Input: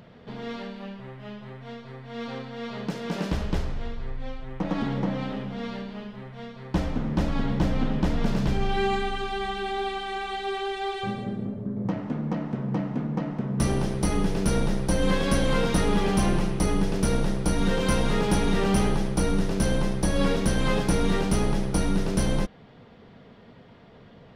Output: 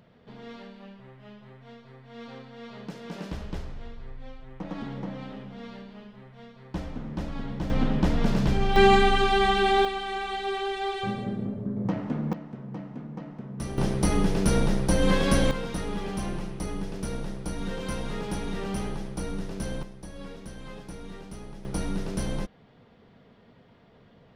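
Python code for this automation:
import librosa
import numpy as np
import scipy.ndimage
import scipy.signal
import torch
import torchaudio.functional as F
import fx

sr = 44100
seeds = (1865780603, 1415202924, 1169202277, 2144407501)

y = fx.gain(x, sr, db=fx.steps((0.0, -8.0), (7.7, 1.0), (8.76, 8.0), (9.85, 0.0), (12.33, -10.0), (13.78, 1.0), (15.51, -9.0), (19.83, -18.0), (21.65, -6.0)))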